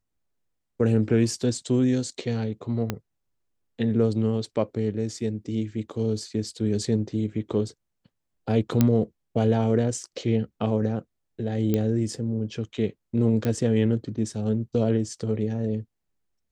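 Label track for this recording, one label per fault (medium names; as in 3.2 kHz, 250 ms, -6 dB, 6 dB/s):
2.900000	2.900000	pop -12 dBFS
8.810000	8.810000	pop -6 dBFS
11.740000	11.740000	pop -12 dBFS
13.450000	13.450000	pop -14 dBFS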